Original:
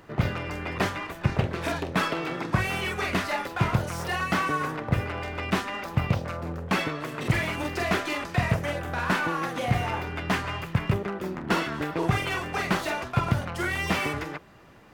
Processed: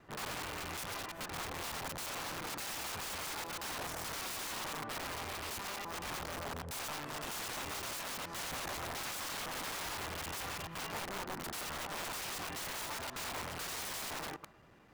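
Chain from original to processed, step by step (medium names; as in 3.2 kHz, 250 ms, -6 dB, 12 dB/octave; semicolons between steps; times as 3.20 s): time reversed locally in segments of 86 ms; integer overflow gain 28 dB; dynamic bell 960 Hz, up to +5 dB, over -49 dBFS, Q 0.96; trim -9 dB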